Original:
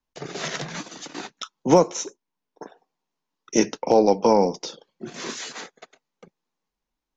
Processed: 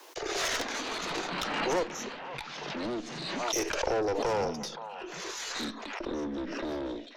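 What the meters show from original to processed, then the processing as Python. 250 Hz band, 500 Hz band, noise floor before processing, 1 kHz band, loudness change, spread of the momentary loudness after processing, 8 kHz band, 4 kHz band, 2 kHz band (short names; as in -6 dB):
-9.5 dB, -9.5 dB, -84 dBFS, -7.0 dB, -10.5 dB, 9 LU, n/a, 0.0 dB, +2.5 dB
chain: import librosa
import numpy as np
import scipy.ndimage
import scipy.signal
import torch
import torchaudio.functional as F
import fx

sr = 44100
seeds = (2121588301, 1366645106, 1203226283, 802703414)

p1 = fx.rider(x, sr, range_db=4, speed_s=0.5)
p2 = scipy.signal.sosfilt(scipy.signal.butter(12, 320.0, 'highpass', fs=sr, output='sos'), p1)
p3 = fx.harmonic_tremolo(p2, sr, hz=1.0, depth_pct=50, crossover_hz=530.0)
p4 = fx.tube_stage(p3, sr, drive_db=25.0, bias=0.55)
p5 = fx.echo_pitch(p4, sr, ms=262, semitones=-7, count=2, db_per_echo=-6.0)
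p6 = p5 + fx.echo_stepped(p5, sr, ms=522, hz=900.0, octaves=0.7, feedback_pct=70, wet_db=-8.5, dry=0)
y = fx.pre_swell(p6, sr, db_per_s=26.0)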